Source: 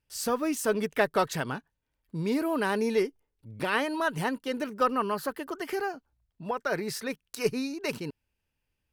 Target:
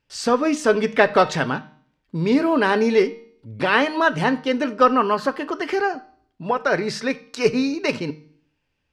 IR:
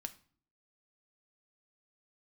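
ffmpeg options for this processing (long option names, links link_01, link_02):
-filter_complex "[0:a]lowpass=6000,lowshelf=frequency=85:gain=-8.5,bandreject=frequency=153.3:width_type=h:width=4,bandreject=frequency=306.6:width_type=h:width=4,bandreject=frequency=459.9:width_type=h:width=4,bandreject=frequency=613.2:width_type=h:width=4,bandreject=frequency=766.5:width_type=h:width=4,bandreject=frequency=919.8:width_type=h:width=4,bandreject=frequency=1073.1:width_type=h:width=4,bandreject=frequency=1226.4:width_type=h:width=4,bandreject=frequency=1379.7:width_type=h:width=4,bandreject=frequency=1533:width_type=h:width=4,bandreject=frequency=1686.3:width_type=h:width=4,bandreject=frequency=1839.6:width_type=h:width=4,bandreject=frequency=1992.9:width_type=h:width=4,bandreject=frequency=2146.2:width_type=h:width=4,bandreject=frequency=2299.5:width_type=h:width=4,bandreject=frequency=2452.8:width_type=h:width=4,bandreject=frequency=2606.1:width_type=h:width=4,bandreject=frequency=2759.4:width_type=h:width=4,bandreject=frequency=2912.7:width_type=h:width=4,bandreject=frequency=3066:width_type=h:width=4,bandreject=frequency=3219.3:width_type=h:width=4,bandreject=frequency=3372.6:width_type=h:width=4,bandreject=frequency=3525.9:width_type=h:width=4,bandreject=frequency=3679.2:width_type=h:width=4,bandreject=frequency=3832.5:width_type=h:width=4,bandreject=frequency=3985.8:width_type=h:width=4,bandreject=frequency=4139.1:width_type=h:width=4,bandreject=frequency=4292.4:width_type=h:width=4,bandreject=frequency=4445.7:width_type=h:width=4,bandreject=frequency=4599:width_type=h:width=4,bandreject=frequency=4752.3:width_type=h:width=4,bandreject=frequency=4905.6:width_type=h:width=4,bandreject=frequency=5058.9:width_type=h:width=4,bandreject=frequency=5212.2:width_type=h:width=4,bandreject=frequency=5365.5:width_type=h:width=4,bandreject=frequency=5518.8:width_type=h:width=4,bandreject=frequency=5672.1:width_type=h:width=4,bandreject=frequency=5825.4:width_type=h:width=4,bandreject=frequency=5978.7:width_type=h:width=4,bandreject=frequency=6132:width_type=h:width=4,asplit=2[link_01][link_02];[1:a]atrim=start_sample=2205,lowpass=8700[link_03];[link_02][link_03]afir=irnorm=-1:irlink=0,volume=4.5dB[link_04];[link_01][link_04]amix=inputs=2:normalize=0,volume=3.5dB"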